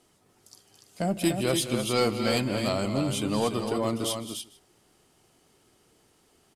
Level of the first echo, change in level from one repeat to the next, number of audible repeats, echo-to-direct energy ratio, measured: -20.0 dB, no regular repeats, 5, -5.0 dB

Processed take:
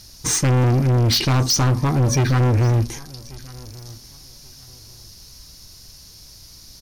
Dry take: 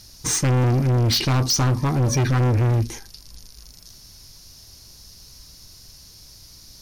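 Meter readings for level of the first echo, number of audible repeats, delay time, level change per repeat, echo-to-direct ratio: -22.5 dB, 2, 1137 ms, -12.5 dB, -22.5 dB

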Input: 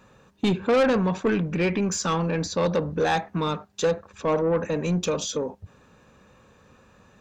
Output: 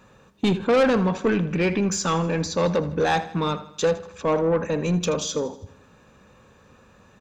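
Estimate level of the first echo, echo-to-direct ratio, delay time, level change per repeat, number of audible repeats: -16.0 dB, -14.5 dB, 80 ms, -5.5 dB, 4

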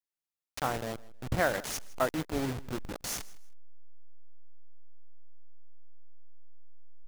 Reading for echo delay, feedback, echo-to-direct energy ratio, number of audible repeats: 159 ms, 24%, -21.0 dB, 2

